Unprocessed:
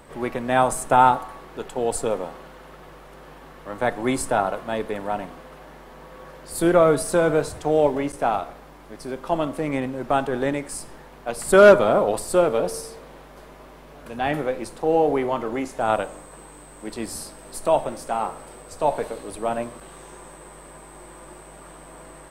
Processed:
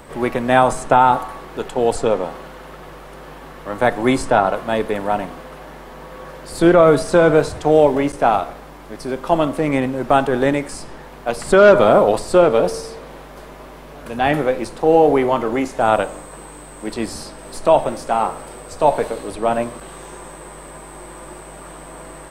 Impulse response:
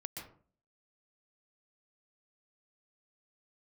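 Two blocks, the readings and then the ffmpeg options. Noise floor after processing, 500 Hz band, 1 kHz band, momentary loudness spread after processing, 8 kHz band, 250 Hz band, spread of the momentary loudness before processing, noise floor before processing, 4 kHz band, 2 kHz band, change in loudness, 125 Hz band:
−38 dBFS, +5.5 dB, +5.5 dB, 23 LU, −0.5 dB, +6.5 dB, 18 LU, −45 dBFS, +5.5 dB, +5.0 dB, +5.0 dB, +6.5 dB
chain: -filter_complex "[0:a]acrossover=split=6600[link_01][link_02];[link_02]acompressor=threshold=-50dB:ratio=6[link_03];[link_01][link_03]amix=inputs=2:normalize=0,alimiter=level_in=8dB:limit=-1dB:release=50:level=0:latency=1,volume=-1dB"

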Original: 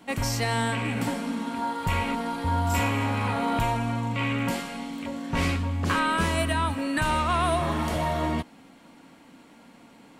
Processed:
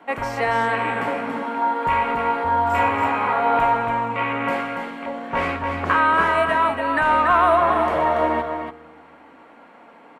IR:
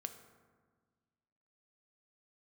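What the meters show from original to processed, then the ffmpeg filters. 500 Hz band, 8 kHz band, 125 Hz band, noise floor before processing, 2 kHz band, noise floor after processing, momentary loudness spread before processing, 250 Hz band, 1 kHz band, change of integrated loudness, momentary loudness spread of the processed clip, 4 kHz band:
+9.0 dB, below −10 dB, −7.5 dB, −53 dBFS, +7.5 dB, −48 dBFS, 6 LU, −0.5 dB, +10.0 dB, +6.5 dB, 10 LU, −2.5 dB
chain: -filter_complex "[0:a]acrossover=split=400 2200:gain=0.126 1 0.0708[link_01][link_02][link_03];[link_01][link_02][link_03]amix=inputs=3:normalize=0,aecho=1:1:284:0.501,asplit=2[link_04][link_05];[1:a]atrim=start_sample=2205[link_06];[link_05][link_06]afir=irnorm=-1:irlink=0,volume=-3dB[link_07];[link_04][link_07]amix=inputs=2:normalize=0,volume=6dB"

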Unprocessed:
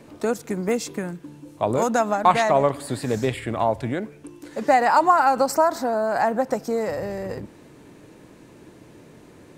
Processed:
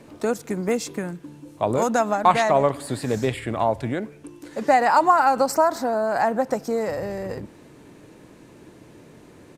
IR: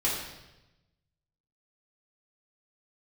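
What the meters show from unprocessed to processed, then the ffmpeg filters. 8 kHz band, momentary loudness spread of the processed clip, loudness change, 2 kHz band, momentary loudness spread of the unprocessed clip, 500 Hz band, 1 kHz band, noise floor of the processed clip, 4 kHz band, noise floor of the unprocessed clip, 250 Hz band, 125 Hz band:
0.0 dB, 14 LU, 0.0 dB, 0.0 dB, 14 LU, 0.0 dB, 0.0 dB, −49 dBFS, 0.0 dB, −49 dBFS, 0.0 dB, 0.0 dB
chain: -af "aresample=32000,aresample=44100"

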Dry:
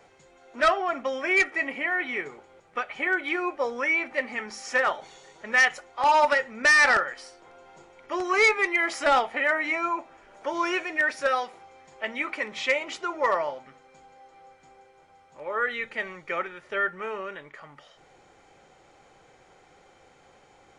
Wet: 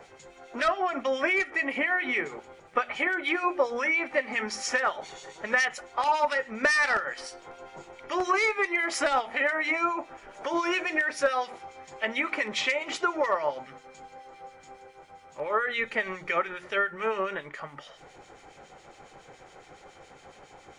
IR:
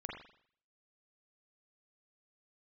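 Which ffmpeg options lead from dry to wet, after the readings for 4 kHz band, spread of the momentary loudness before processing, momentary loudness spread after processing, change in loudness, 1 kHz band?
−1.0 dB, 14 LU, 17 LU, −2.5 dB, −2.0 dB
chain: -filter_complex "[0:a]bandreject=frequency=60:width_type=h:width=6,bandreject=frequency=120:width_type=h:width=6,bandreject=frequency=180:width_type=h:width=6,bandreject=frequency=240:width_type=h:width=6,bandreject=frequency=300:width_type=h:width=6,bandreject=frequency=360:width_type=h:width=6,acompressor=threshold=-29dB:ratio=6,acrossover=split=2000[link_01][link_02];[link_01]aeval=exprs='val(0)*(1-0.7/2+0.7/2*cos(2*PI*7.2*n/s))':channel_layout=same[link_03];[link_02]aeval=exprs='val(0)*(1-0.7/2-0.7/2*cos(2*PI*7.2*n/s))':channel_layout=same[link_04];[link_03][link_04]amix=inputs=2:normalize=0,volume=9dB"

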